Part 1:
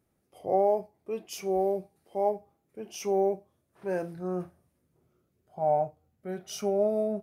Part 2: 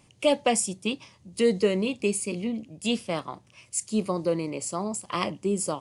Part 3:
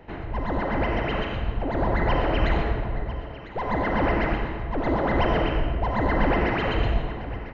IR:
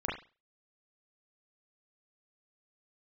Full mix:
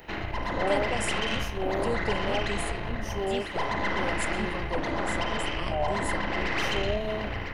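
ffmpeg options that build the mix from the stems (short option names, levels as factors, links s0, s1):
-filter_complex "[0:a]adelay=100,volume=0.562[s0];[1:a]adelay=450,volume=0.316[s1];[2:a]acompressor=threshold=0.0398:ratio=6,crystalizer=i=9.5:c=0,aeval=exprs='(tanh(12.6*val(0)+0.7)-tanh(0.7))/12.6':c=same,volume=0.708,asplit=2[s2][s3];[s3]volume=0.562[s4];[3:a]atrim=start_sample=2205[s5];[s4][s5]afir=irnorm=-1:irlink=0[s6];[s0][s1][s2][s6]amix=inputs=4:normalize=0"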